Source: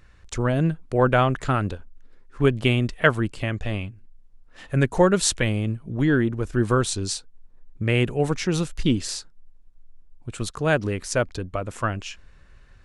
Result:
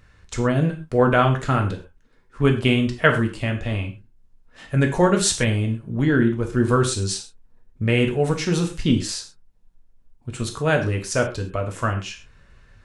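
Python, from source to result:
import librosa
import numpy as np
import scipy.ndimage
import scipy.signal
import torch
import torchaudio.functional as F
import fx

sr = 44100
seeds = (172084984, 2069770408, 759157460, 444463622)

y = fx.rev_gated(x, sr, seeds[0], gate_ms=150, shape='falling', drr_db=2.5)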